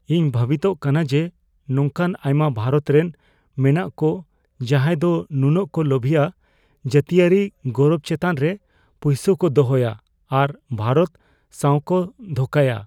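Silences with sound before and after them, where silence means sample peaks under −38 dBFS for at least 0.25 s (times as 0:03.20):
0:01.29–0:01.69
0:03.11–0:03.58
0:04.22–0:04.60
0:06.30–0:06.85
0:08.57–0:09.02
0:09.99–0:10.31
0:11.15–0:11.54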